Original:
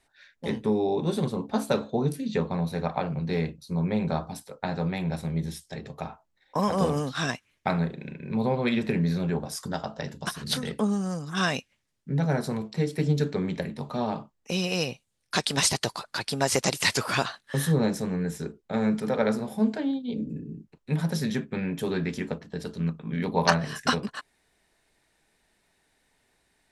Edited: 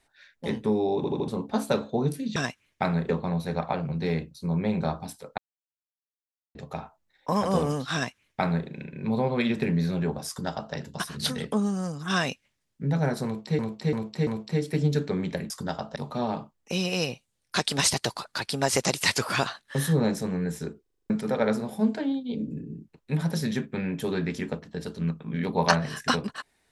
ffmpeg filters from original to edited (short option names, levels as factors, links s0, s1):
-filter_complex "[0:a]asplit=21[s0][s1][s2][s3][s4][s5][s6][s7][s8][s9][s10][s11][s12][s13][s14][s15][s16][s17][s18][s19][s20];[s0]atrim=end=1.042[s21];[s1]atrim=start=0.958:end=1.042[s22];[s2]atrim=start=0.958:end=1.042[s23];[s3]atrim=start=0.958:end=1.042[s24];[s4]atrim=start=1.278:end=2.362[s25];[s5]atrim=start=7.208:end=7.942[s26];[s6]atrim=start=2.358:end=4.65,asetpts=PTS-STARTPTS,afade=t=out:st=2.288:d=0.004:c=hsin[s27];[s7]atrim=start=4.65:end=5.82,asetpts=PTS-STARTPTS,volume=0[s28];[s8]atrim=start=5.82:end=12.862,asetpts=PTS-STARTPTS,afade=t=in:d=0.004:c=hsin[s29];[s9]atrim=start=12.518:end=12.862[s30];[s10]atrim=start=12.518:end=12.862[s31];[s11]atrim=start=12.518:end=13.752[s32];[s12]atrim=start=9.548:end=10.012[s33];[s13]atrim=start=13.748:end=18.652[s34];[s14]atrim=start=18.608:end=18.652[s35];[s15]atrim=start=18.608:end=18.652[s36];[s16]atrim=start=18.608:end=18.652[s37];[s17]atrim=start=18.608:end=18.652[s38];[s18]atrim=start=18.608:end=18.652[s39];[s19]atrim=start=18.608:end=18.652[s40];[s20]atrim=start=18.888[s41];[s21][s22]acrossfade=d=0.004:c1=hsin:c2=hsin[s42];[s42][s23]acrossfade=d=0.004:c1=hsin:c2=hsin[s43];[s43][s24]acrossfade=d=0.004:c1=hsin:c2=hsin[s44];[s44][s25]acrossfade=d=0.004:c1=hsin:c2=hsin[s45];[s45][s26]acrossfade=d=0.004:c1=hsin:c2=hsin[s46];[s27][s28][s29]concat=n=3:v=0:a=1[s47];[s46][s47]acrossfade=d=0.004:c1=hsin:c2=hsin[s48];[s48][s30]acrossfade=d=0.004:c1=hsin:c2=hsin[s49];[s49][s31]acrossfade=d=0.004:c1=hsin:c2=hsin[s50];[s50][s32]acrossfade=d=0.004:c1=hsin:c2=hsin[s51];[s51][s33]acrossfade=d=0.004:c1=hsin:c2=hsin[s52];[s52][s34]acrossfade=d=0.004:c1=hsin:c2=hsin[s53];[s53][s35]acrossfade=d=0.004:c1=hsin:c2=hsin[s54];[s54][s36]acrossfade=d=0.004:c1=hsin:c2=hsin[s55];[s55][s37]acrossfade=d=0.004:c1=hsin:c2=hsin[s56];[s56][s38]acrossfade=d=0.004:c1=hsin:c2=hsin[s57];[s57][s39]acrossfade=d=0.004:c1=hsin:c2=hsin[s58];[s58][s40]acrossfade=d=0.004:c1=hsin:c2=hsin[s59];[s59][s41]acrossfade=d=0.004:c1=hsin:c2=hsin"